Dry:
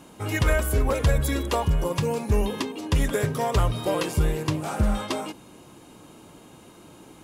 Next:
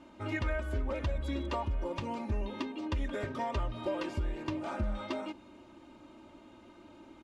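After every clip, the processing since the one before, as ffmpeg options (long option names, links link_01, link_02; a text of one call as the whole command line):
ffmpeg -i in.wav -af "aecho=1:1:3.3:0.77,acompressor=threshold=-23dB:ratio=3,lowpass=3500,volume=-8dB" out.wav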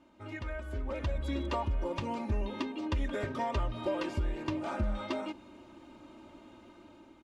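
ffmpeg -i in.wav -af "dynaudnorm=framelen=360:gausssize=5:maxgain=9dB,volume=-7.5dB" out.wav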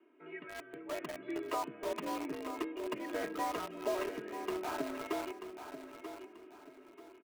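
ffmpeg -i in.wav -filter_complex "[0:a]highpass=frequency=170:width_type=q:width=0.5412,highpass=frequency=170:width_type=q:width=1.307,lowpass=frequency=2600:width_type=q:width=0.5176,lowpass=frequency=2600:width_type=q:width=0.7071,lowpass=frequency=2600:width_type=q:width=1.932,afreqshift=59,acrossover=split=580|1200[link_01][link_02][link_03];[link_02]acrusher=bits=6:mix=0:aa=0.000001[link_04];[link_01][link_04][link_03]amix=inputs=3:normalize=0,aecho=1:1:936|1872|2808:0.335|0.104|0.0322,volume=-2dB" out.wav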